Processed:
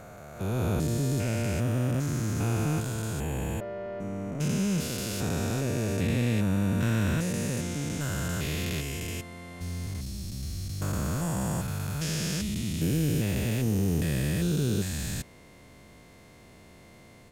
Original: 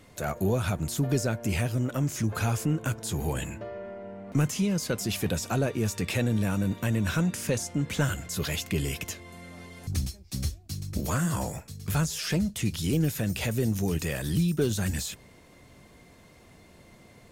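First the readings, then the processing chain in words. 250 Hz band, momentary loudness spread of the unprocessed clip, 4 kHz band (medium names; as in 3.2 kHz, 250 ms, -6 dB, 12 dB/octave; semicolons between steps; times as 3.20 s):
0.0 dB, 9 LU, -1.5 dB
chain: spectrogram pixelated in time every 400 ms; level rider gain up to 10 dB; trim -7 dB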